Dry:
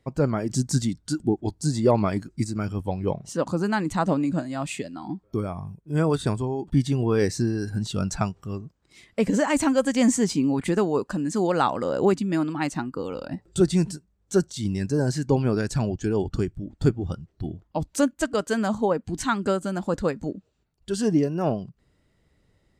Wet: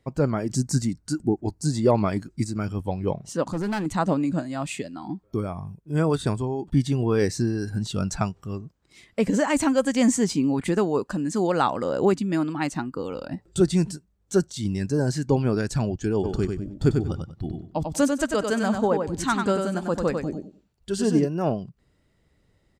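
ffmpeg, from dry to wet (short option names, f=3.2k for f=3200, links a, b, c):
-filter_complex "[0:a]asettb=1/sr,asplit=3[a][b][c];[a]atrim=end=0.564[d];[b]atrim=start=0.56:end=1.65,asetpts=PTS-STARTPTS,afade=t=in:d=0.004:c=qsin,afade=t=out:st=1.086:d=0.004:c=qsin,equalizer=f=3.4k:t=o:w=0.32:g=-14[e];[c]atrim=start=1.646[f];[d][e]acrossfade=d=0.004:c1=hsin:c2=qsin[g];[g][f]acrossfade=d=0.004:c1=qsin:c2=hsin,asettb=1/sr,asplit=3[h][i][j];[h]atrim=end=3.444[k];[i]atrim=start=3.44:end=3.86,asetpts=PTS-STARTPTS,afade=t=in:d=0.004:c=qsin,afade=t=out:st=0.416:d=0.004:c=qsin,asoftclip=type=hard:threshold=-23dB[l];[j]atrim=start=3.856[m];[k][l]acrossfade=d=0.004:c1=hsin:c2=qsin[n];[n][m]acrossfade=d=0.004:c1=qsin:c2=hsin,asplit=3[o][p][q];[o]afade=t=out:st=16.23:d=0.02[r];[p]aecho=1:1:95|190|285:0.562|0.129|0.0297,afade=t=in:st=16.23:d=0.02,afade=t=out:st=21.24:d=0.02[s];[q]afade=t=in:st=21.24:d=0.02[t];[r][s][t]amix=inputs=3:normalize=0"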